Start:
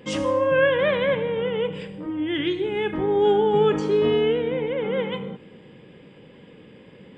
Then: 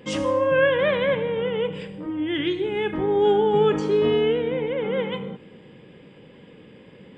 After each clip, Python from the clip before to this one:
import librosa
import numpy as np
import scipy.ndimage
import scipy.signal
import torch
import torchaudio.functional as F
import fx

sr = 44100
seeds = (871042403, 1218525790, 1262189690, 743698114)

y = x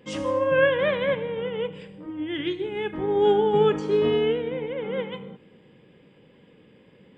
y = fx.upward_expand(x, sr, threshold_db=-30.0, expansion=1.5)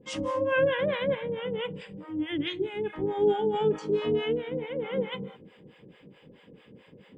y = fx.harmonic_tremolo(x, sr, hz=4.6, depth_pct=100, crossover_hz=590.0)
y = fx.rider(y, sr, range_db=10, speed_s=2.0)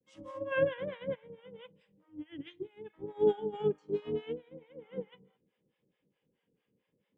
y = fx.vibrato(x, sr, rate_hz=0.73, depth_cents=45.0)
y = fx.upward_expand(y, sr, threshold_db=-36.0, expansion=2.5)
y = y * 10.0 ** (-1.5 / 20.0)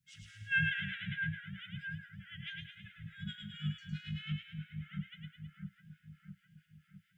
y = fx.brickwall_bandstop(x, sr, low_hz=190.0, high_hz=1300.0)
y = fx.echo_split(y, sr, split_hz=1600.0, low_ms=657, high_ms=107, feedback_pct=52, wet_db=-3.5)
y = y * 10.0 ** (7.0 / 20.0)